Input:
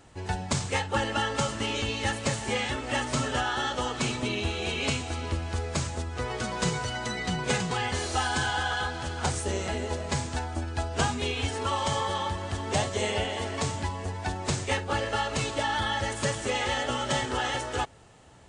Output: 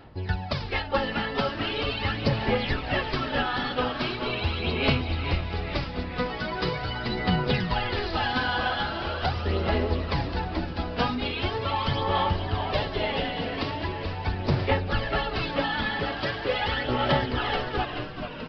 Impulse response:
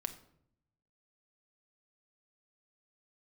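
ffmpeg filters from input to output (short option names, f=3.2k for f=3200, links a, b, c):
-filter_complex "[0:a]aphaser=in_gain=1:out_gain=1:delay=4.1:decay=0.58:speed=0.41:type=sinusoidal,asplit=9[a][b][c][d][e][f][g][h][i];[b]adelay=432,afreqshift=-130,volume=-8dB[j];[c]adelay=864,afreqshift=-260,volume=-12.2dB[k];[d]adelay=1296,afreqshift=-390,volume=-16.3dB[l];[e]adelay=1728,afreqshift=-520,volume=-20.5dB[m];[f]adelay=2160,afreqshift=-650,volume=-24.6dB[n];[g]adelay=2592,afreqshift=-780,volume=-28.8dB[o];[h]adelay=3024,afreqshift=-910,volume=-32.9dB[p];[i]adelay=3456,afreqshift=-1040,volume=-37.1dB[q];[a][j][k][l][m][n][o][p][q]amix=inputs=9:normalize=0,aresample=11025,aresample=44100,volume=-1dB"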